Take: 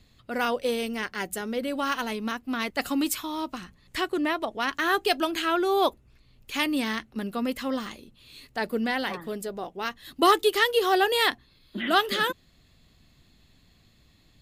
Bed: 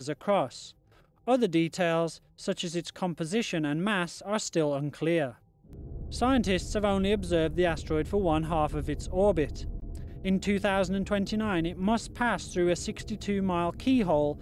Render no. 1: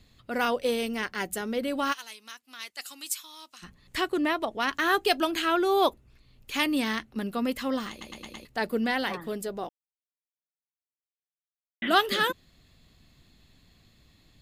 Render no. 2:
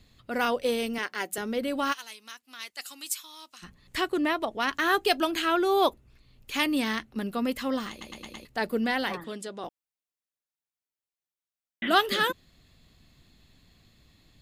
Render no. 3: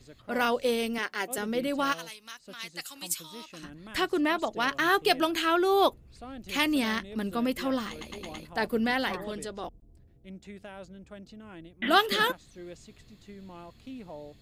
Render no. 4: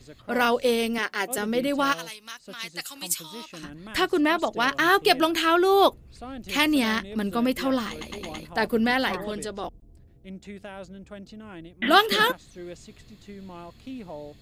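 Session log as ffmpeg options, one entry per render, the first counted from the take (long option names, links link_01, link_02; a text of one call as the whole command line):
ffmpeg -i in.wav -filter_complex "[0:a]asplit=3[link_01][link_02][link_03];[link_01]afade=type=out:start_time=1.92:duration=0.02[link_04];[link_02]bandpass=frequency=7800:width_type=q:width=0.74,afade=type=in:start_time=1.92:duration=0.02,afade=type=out:start_time=3.62:duration=0.02[link_05];[link_03]afade=type=in:start_time=3.62:duration=0.02[link_06];[link_04][link_05][link_06]amix=inputs=3:normalize=0,asplit=8[link_07][link_08][link_09][link_10][link_11][link_12][link_13][link_14];[link_07]atrim=end=8.012[link_15];[link_08]atrim=start=7.898:end=8.012[link_16];[link_09]atrim=start=7.898:end=8.012[link_17];[link_10]atrim=start=7.898:end=8.012[link_18];[link_11]atrim=start=7.898:end=8.012[link_19];[link_12]atrim=start=8.448:end=9.69,asetpts=PTS-STARTPTS,afade=type=out:start_time=1.238:duration=0.004:curve=hsin[link_20];[link_13]atrim=start=9.69:end=11.82,asetpts=PTS-STARTPTS,volume=0[link_21];[link_14]atrim=start=11.82,asetpts=PTS-STARTPTS,afade=type=in:duration=0.004:curve=hsin[link_22];[link_15][link_16]acrossfade=duration=0.004:curve1=hsin:curve2=hsin[link_23];[link_23][link_17]acrossfade=duration=0.004:curve1=hsin:curve2=hsin[link_24];[link_24][link_18]acrossfade=duration=0.004:curve1=hsin:curve2=hsin[link_25];[link_25][link_19]acrossfade=duration=0.004:curve1=hsin:curve2=hsin[link_26];[link_20][link_21][link_22]concat=n=3:v=0:a=1[link_27];[link_26][link_27]acrossfade=duration=0.004:curve1=hsin:curve2=hsin" out.wav
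ffmpeg -i in.wav -filter_complex "[0:a]asettb=1/sr,asplit=3[link_01][link_02][link_03];[link_01]atrim=end=0.984[link_04];[link_02]atrim=start=0.98:end=1.38,asetpts=PTS-STARTPTS,afade=type=in:duration=0.004:curve=qsin,afade=type=out:start_time=0.396:duration=0.004:curve=qsin,highpass=310[link_05];[link_03]atrim=start=1.376[link_06];[link_04][link_05]acrossfade=duration=0.004:curve1=hsin:curve2=qsin[link_07];[link_07][link_06]acrossfade=duration=0.004:curve1=qsin:curve2=hsin,asettb=1/sr,asplit=3[link_08][link_09][link_10];[link_08]atrim=end=9.244[link_11];[link_09]atrim=start=9.24:end=9.64,asetpts=PTS-STARTPTS,afade=type=in:duration=0.004:curve=qsin,afade=type=out:start_time=0.396:duration=0.004:curve=qsin,highpass=220,equalizer=frequency=420:width_type=q:width=4:gain=-5,equalizer=frequency=710:width_type=q:width=4:gain=-7,equalizer=frequency=3400:width_type=q:width=4:gain=5,lowpass=frequency=9600:width=0.5412,lowpass=frequency=9600:width=1.3066[link_12];[link_10]atrim=start=9.636[link_13];[link_11][link_12]acrossfade=duration=0.004:curve1=hsin:curve2=qsin[link_14];[link_14][link_13]acrossfade=duration=0.004:curve1=qsin:curve2=hsin" out.wav
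ffmpeg -i in.wav -i bed.wav -filter_complex "[1:a]volume=-18dB[link_01];[0:a][link_01]amix=inputs=2:normalize=0" out.wav
ffmpeg -i in.wav -af "volume=4.5dB" out.wav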